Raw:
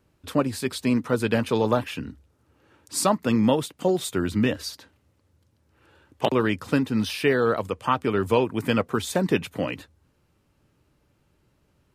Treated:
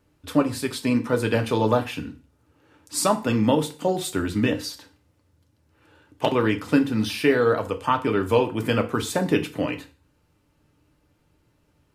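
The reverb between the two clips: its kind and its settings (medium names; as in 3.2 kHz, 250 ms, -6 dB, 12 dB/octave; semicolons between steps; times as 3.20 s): FDN reverb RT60 0.38 s, low-frequency decay 1×, high-frequency decay 0.95×, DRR 5.5 dB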